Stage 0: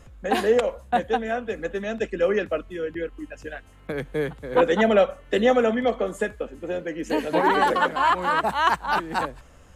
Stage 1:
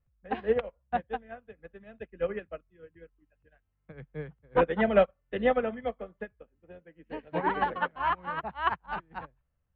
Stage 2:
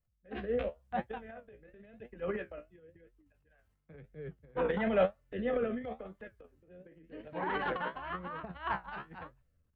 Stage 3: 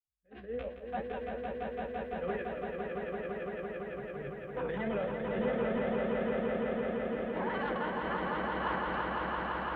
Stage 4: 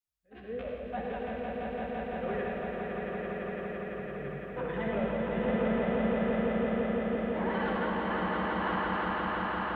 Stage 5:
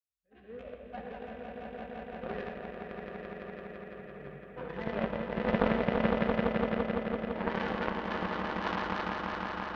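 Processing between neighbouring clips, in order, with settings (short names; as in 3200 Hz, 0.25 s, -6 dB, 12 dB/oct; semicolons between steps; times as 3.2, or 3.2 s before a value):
LPF 2900 Hz 24 dB/oct; resonant low shelf 200 Hz +7 dB, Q 1.5; upward expander 2.5:1, over -36 dBFS; gain -1.5 dB
flange 0.96 Hz, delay 8 ms, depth 9 ms, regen +55%; transient shaper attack -4 dB, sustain +11 dB; rotary speaker horn 0.75 Hz
opening faded in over 1.08 s; limiter -28 dBFS, peak gain reduction 10.5 dB; on a send: swelling echo 0.169 s, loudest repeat 5, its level -4 dB
reverb RT60 1.4 s, pre-delay 56 ms, DRR 0.5 dB
added harmonics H 3 -11 dB, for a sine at -17.5 dBFS; gain +7 dB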